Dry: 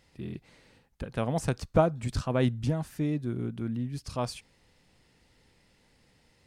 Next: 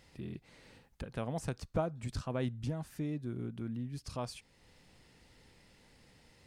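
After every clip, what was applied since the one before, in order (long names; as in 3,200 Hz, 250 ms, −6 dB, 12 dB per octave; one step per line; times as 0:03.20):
downward compressor 1.5 to 1, threshold −54 dBFS, peak gain reduction 13 dB
level +2 dB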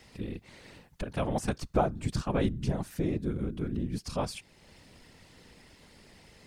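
random phases in short frames
level +7 dB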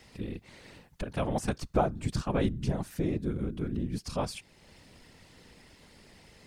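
no processing that can be heard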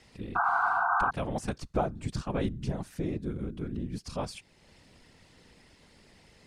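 low-pass filter 11,000 Hz 12 dB per octave
sound drawn into the spectrogram noise, 0:00.35–0:01.11, 680–1,600 Hz −24 dBFS
level −2.5 dB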